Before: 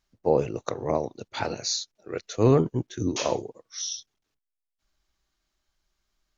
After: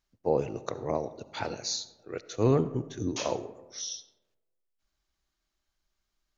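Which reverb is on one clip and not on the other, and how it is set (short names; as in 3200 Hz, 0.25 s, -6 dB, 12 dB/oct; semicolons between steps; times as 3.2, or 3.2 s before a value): digital reverb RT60 1.2 s, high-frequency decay 0.4×, pre-delay 30 ms, DRR 15 dB; gain -4.5 dB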